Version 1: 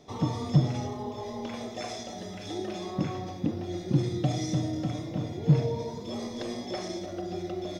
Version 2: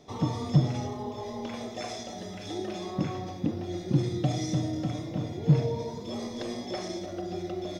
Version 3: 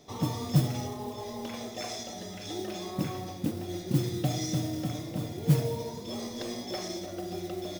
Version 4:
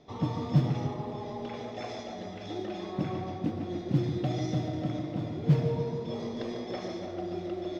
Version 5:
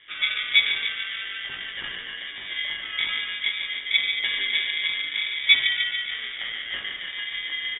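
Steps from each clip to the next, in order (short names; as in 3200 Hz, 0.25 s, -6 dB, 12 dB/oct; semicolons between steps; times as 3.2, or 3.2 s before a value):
nothing audible
high shelf 4400 Hz +8 dB; modulation noise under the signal 19 dB; gain -2 dB
air absorption 220 m; on a send: tape echo 0.145 s, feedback 79%, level -6 dB, low-pass 2700 Hz
doubler 19 ms -3 dB; inverted band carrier 3000 Hz; ring modulator 600 Hz; gain +6 dB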